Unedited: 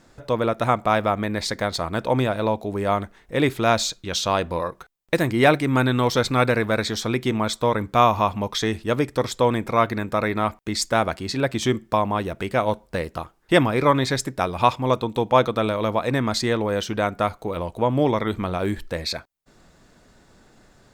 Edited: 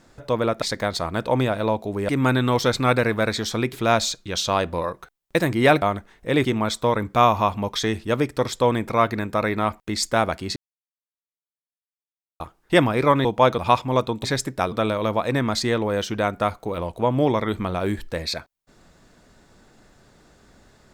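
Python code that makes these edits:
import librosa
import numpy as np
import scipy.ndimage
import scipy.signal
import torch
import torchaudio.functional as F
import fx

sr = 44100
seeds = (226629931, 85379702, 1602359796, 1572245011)

y = fx.edit(x, sr, fx.cut(start_s=0.62, length_s=0.79),
    fx.swap(start_s=2.88, length_s=0.63, other_s=5.6, other_length_s=1.64),
    fx.silence(start_s=11.35, length_s=1.84),
    fx.swap(start_s=14.04, length_s=0.48, other_s=15.18, other_length_s=0.33), tone=tone)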